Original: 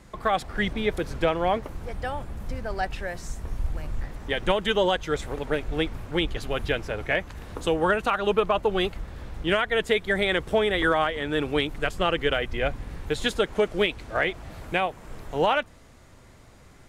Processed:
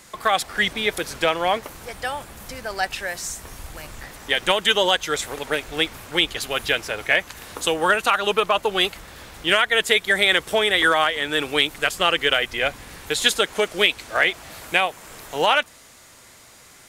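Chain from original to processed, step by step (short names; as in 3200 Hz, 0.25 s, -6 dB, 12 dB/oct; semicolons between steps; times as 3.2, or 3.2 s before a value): tilt +3.5 dB/oct; gain +4.5 dB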